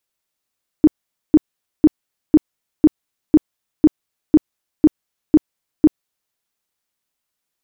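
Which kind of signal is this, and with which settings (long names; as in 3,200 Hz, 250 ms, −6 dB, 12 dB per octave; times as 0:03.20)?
tone bursts 307 Hz, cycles 10, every 0.50 s, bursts 11, −4.5 dBFS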